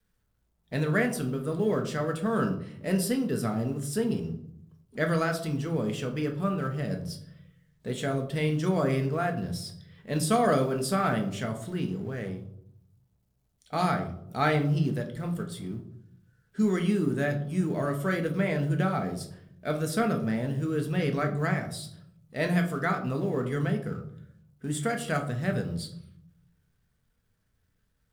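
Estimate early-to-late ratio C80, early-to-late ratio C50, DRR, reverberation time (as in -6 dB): 14.5 dB, 10.5 dB, 3.5 dB, 0.70 s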